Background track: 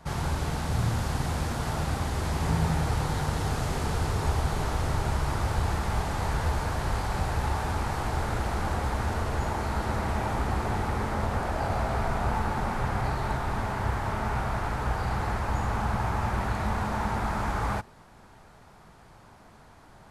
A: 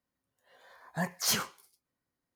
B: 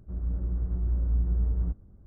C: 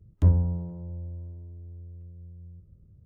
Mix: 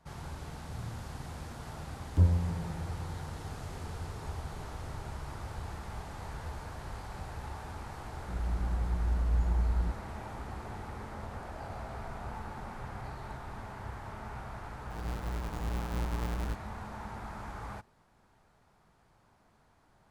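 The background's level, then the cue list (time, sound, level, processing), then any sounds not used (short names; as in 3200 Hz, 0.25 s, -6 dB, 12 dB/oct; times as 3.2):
background track -13.5 dB
1.95 add C -4.5 dB
8.19 add B -3 dB
14.82 add B -12.5 dB + half-waves squared off
not used: A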